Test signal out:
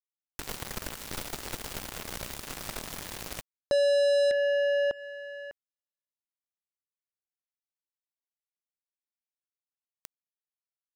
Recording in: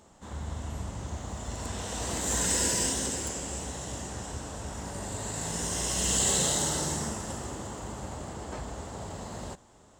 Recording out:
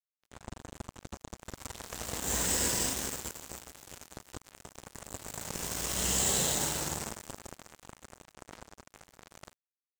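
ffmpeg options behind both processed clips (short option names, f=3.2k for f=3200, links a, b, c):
-filter_complex "[0:a]asplit=2[a][b];[b]acompressor=threshold=-39dB:ratio=12,volume=1.5dB[c];[a][c]amix=inputs=2:normalize=0,acrusher=bits=3:mix=0:aa=0.5,volume=-4.5dB"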